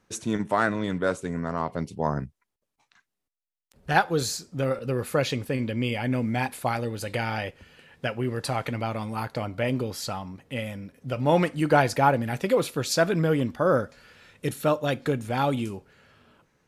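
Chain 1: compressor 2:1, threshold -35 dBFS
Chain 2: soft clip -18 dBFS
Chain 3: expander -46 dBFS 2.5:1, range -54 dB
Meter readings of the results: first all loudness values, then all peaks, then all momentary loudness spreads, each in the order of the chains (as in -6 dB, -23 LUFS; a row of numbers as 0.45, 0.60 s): -34.5, -29.0, -27.0 LUFS; -15.5, -18.0, -6.0 dBFS; 8, 9, 11 LU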